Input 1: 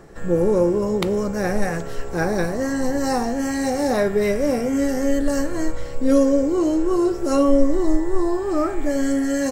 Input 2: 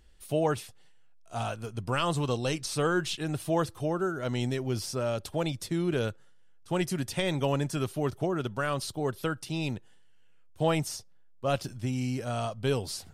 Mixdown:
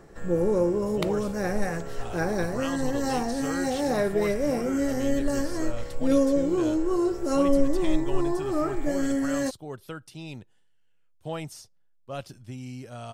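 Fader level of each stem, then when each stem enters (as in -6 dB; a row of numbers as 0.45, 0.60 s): -5.5, -7.5 dB; 0.00, 0.65 s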